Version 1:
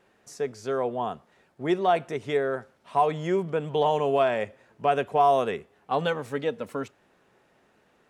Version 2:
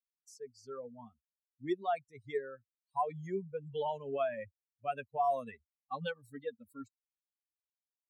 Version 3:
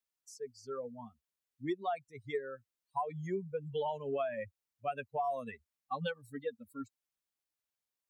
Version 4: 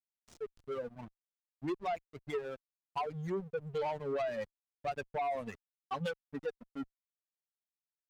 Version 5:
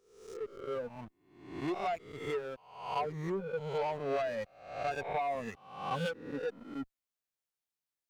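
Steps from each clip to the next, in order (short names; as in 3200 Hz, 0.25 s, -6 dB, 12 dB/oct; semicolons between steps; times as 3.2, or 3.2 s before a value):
per-bin expansion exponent 3; gain -6.5 dB
compressor 6:1, threshold -35 dBFS, peak gain reduction 8.5 dB; gain +3.5 dB
backlash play -41.5 dBFS; added harmonics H 5 -15 dB, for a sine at -24 dBFS; gain -2 dB
spectral swells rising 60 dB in 0.70 s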